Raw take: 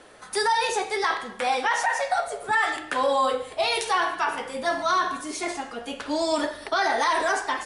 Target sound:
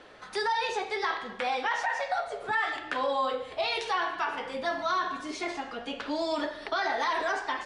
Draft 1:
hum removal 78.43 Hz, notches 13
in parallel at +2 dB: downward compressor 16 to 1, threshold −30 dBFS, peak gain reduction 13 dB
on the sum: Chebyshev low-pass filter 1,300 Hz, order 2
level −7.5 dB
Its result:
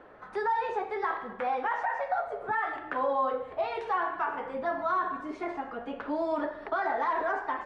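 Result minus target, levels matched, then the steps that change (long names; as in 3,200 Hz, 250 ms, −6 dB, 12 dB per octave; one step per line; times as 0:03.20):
4,000 Hz band −16.0 dB
change: Chebyshev low-pass filter 4,000 Hz, order 2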